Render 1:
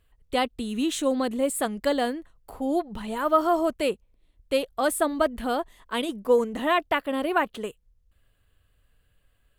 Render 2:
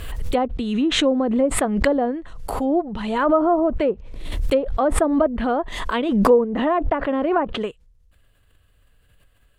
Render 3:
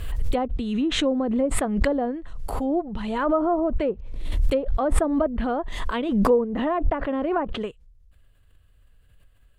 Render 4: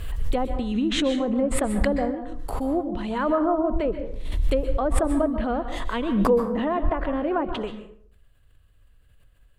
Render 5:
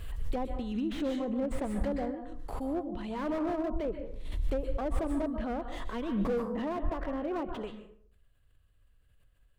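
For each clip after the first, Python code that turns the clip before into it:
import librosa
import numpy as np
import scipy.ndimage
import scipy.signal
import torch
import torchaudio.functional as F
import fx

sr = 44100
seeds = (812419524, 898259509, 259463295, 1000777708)

y1 = fx.env_lowpass_down(x, sr, base_hz=840.0, full_db=-20.5)
y1 = fx.pre_swell(y1, sr, db_per_s=42.0)
y1 = y1 * librosa.db_to_amplitude(5.5)
y2 = fx.low_shelf(y1, sr, hz=130.0, db=8.0)
y2 = y2 * librosa.db_to_amplitude(-5.0)
y3 = fx.rev_plate(y2, sr, seeds[0], rt60_s=0.57, hf_ratio=0.65, predelay_ms=115, drr_db=8.5)
y3 = y3 * librosa.db_to_amplitude(-1.0)
y4 = fx.slew_limit(y3, sr, full_power_hz=51.0)
y4 = y4 * librosa.db_to_amplitude(-8.5)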